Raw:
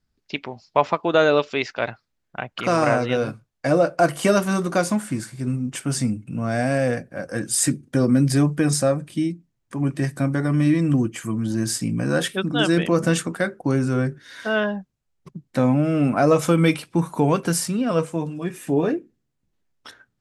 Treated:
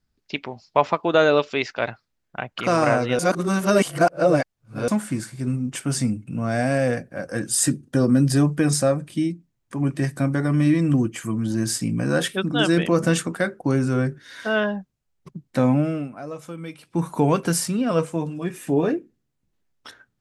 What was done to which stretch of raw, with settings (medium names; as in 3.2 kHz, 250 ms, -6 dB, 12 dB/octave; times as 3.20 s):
3.19–4.88 s: reverse
7.50–8.44 s: band-stop 2.2 kHz, Q 5.7
15.78–17.08 s: dip -17.5 dB, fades 0.31 s